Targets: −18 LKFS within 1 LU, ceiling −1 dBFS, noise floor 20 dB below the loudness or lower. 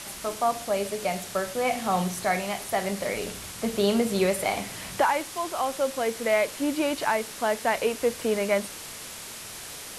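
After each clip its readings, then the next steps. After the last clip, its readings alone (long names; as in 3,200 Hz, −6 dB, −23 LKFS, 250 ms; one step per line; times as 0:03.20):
background noise floor −40 dBFS; target noise floor −48 dBFS; integrated loudness −27.5 LKFS; sample peak −12.0 dBFS; target loudness −18.0 LKFS
→ broadband denoise 8 dB, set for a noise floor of −40 dBFS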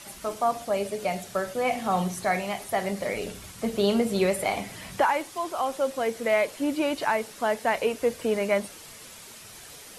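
background noise floor −46 dBFS; target noise floor −47 dBFS
→ broadband denoise 6 dB, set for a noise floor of −46 dBFS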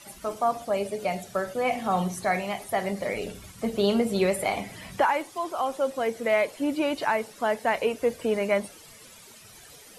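background noise floor −50 dBFS; integrated loudness −27.0 LKFS; sample peak −12.5 dBFS; target loudness −18.0 LKFS
→ level +9 dB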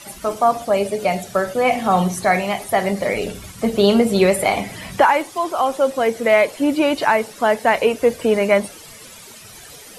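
integrated loudness −18.0 LKFS; sample peak −3.5 dBFS; background noise floor −41 dBFS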